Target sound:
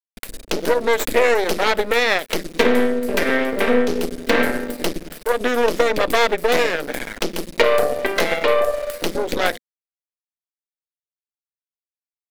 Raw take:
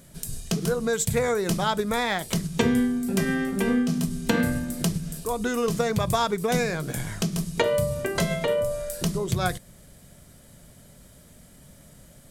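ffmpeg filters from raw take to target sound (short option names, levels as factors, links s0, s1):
-af "aeval=exprs='0.398*(cos(1*acos(clip(val(0)/0.398,-1,1)))-cos(1*PI/2))+0.0891*(cos(8*acos(clip(val(0)/0.398,-1,1)))-cos(8*PI/2))':c=same,anlmdn=0.398,equalizer=f=140:w=0.33:g=-12.5,aeval=exprs='val(0)*gte(abs(val(0)),0.00841)':c=same,equalizer=f=125:t=o:w=1:g=-9,equalizer=f=250:t=o:w=1:g=10,equalizer=f=500:t=o:w=1:g=11,equalizer=f=2000:t=o:w=1:g=7,equalizer=f=4000:t=o:w=1:g=3,equalizer=f=8000:t=o:w=1:g=-7,volume=1.12"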